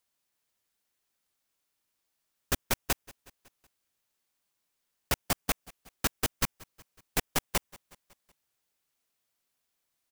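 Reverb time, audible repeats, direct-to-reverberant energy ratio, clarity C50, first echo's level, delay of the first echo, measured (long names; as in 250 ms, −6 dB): no reverb audible, 3, no reverb audible, no reverb audible, −23.5 dB, 185 ms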